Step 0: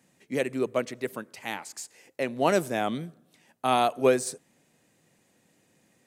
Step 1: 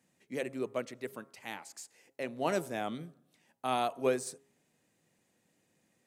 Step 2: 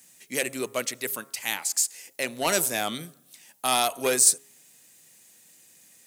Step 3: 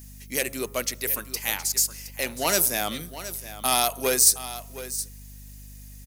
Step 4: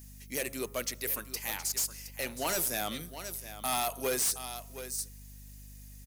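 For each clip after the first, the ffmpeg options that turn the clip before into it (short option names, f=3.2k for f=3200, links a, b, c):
-af "bandreject=f=136.7:t=h:w=4,bandreject=f=273.4:t=h:w=4,bandreject=f=410.1:t=h:w=4,bandreject=f=546.8:t=h:w=4,bandreject=f=683.5:t=h:w=4,bandreject=f=820.2:t=h:w=4,bandreject=f=956.9:t=h:w=4,bandreject=f=1.0936k:t=h:w=4,bandreject=f=1.2303k:t=h:w=4,bandreject=f=1.367k:t=h:w=4,volume=-8dB"
-af "asoftclip=type=tanh:threshold=-23dB,crystalizer=i=10:c=0,volume=3.5dB"
-af "aeval=exprs='val(0)+0.00631*(sin(2*PI*50*n/s)+sin(2*PI*2*50*n/s)/2+sin(2*PI*3*50*n/s)/3+sin(2*PI*4*50*n/s)/4+sin(2*PI*5*50*n/s)/5)':c=same,aecho=1:1:718:0.211,aexciter=amount=1.9:drive=1.5:freq=4.6k"
-af "asoftclip=type=hard:threshold=-21dB,volume=-5.5dB"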